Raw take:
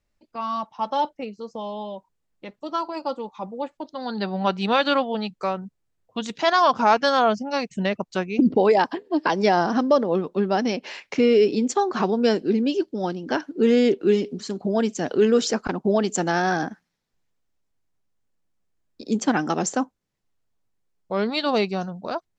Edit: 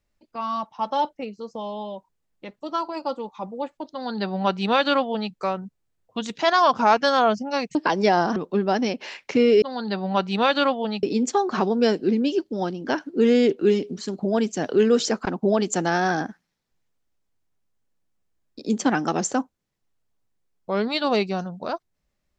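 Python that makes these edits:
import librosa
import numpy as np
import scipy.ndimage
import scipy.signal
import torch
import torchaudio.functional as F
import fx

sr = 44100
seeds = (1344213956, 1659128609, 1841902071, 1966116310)

y = fx.edit(x, sr, fx.duplicate(start_s=3.92, length_s=1.41, to_s=11.45),
    fx.cut(start_s=7.75, length_s=1.4),
    fx.cut(start_s=9.76, length_s=0.43), tone=tone)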